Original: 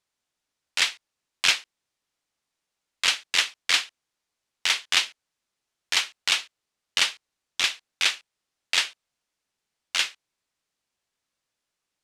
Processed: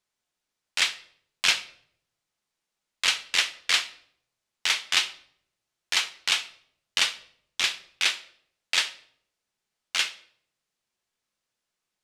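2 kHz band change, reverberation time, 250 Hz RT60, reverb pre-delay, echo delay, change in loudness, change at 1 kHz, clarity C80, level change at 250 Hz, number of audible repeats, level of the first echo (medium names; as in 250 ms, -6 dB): -1.0 dB, 0.65 s, 0.80 s, 5 ms, no echo, -1.0 dB, -1.0 dB, 19.0 dB, -1.0 dB, no echo, no echo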